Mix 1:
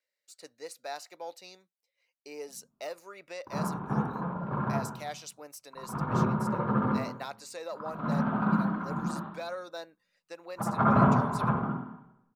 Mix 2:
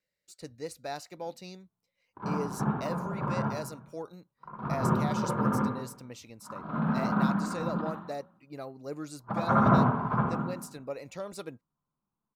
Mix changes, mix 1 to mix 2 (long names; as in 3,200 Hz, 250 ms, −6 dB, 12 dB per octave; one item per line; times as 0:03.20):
speech: remove high-pass filter 530 Hz 12 dB per octave
background: entry −1.30 s